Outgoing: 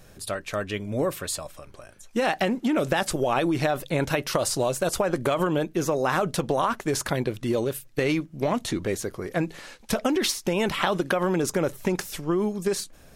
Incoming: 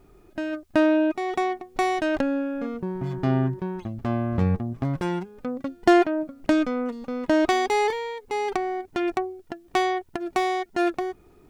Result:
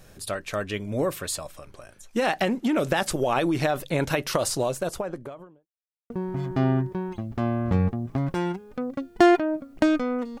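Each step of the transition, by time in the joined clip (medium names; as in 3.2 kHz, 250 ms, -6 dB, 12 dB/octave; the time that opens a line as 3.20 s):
outgoing
4.39–5.68 s: studio fade out
5.68–6.10 s: mute
6.10 s: go over to incoming from 2.77 s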